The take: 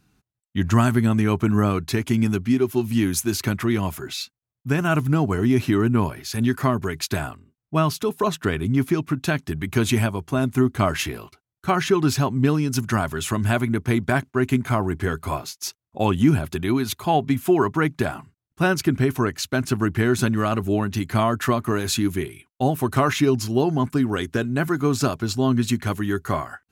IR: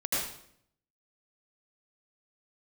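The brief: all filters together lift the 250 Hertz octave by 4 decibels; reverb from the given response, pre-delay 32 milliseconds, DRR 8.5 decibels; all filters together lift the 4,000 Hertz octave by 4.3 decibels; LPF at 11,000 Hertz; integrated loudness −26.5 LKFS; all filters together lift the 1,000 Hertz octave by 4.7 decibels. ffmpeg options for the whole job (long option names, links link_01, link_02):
-filter_complex "[0:a]lowpass=11000,equalizer=frequency=250:width_type=o:gain=4.5,equalizer=frequency=1000:width_type=o:gain=5.5,equalizer=frequency=4000:width_type=o:gain=5,asplit=2[link_01][link_02];[1:a]atrim=start_sample=2205,adelay=32[link_03];[link_02][link_03]afir=irnorm=-1:irlink=0,volume=-17dB[link_04];[link_01][link_04]amix=inputs=2:normalize=0,volume=-8dB"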